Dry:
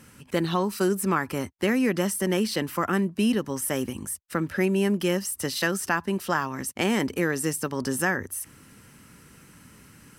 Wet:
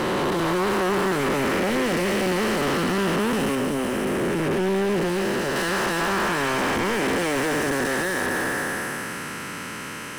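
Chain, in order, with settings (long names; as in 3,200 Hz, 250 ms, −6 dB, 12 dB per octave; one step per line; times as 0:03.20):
spectrum smeared in time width 987 ms
mid-hump overdrive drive 35 dB, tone 2,100 Hz, clips at −14.5 dBFS, from 0:03.55 tone 1,300 Hz, from 0:05.56 tone 2,200 Hz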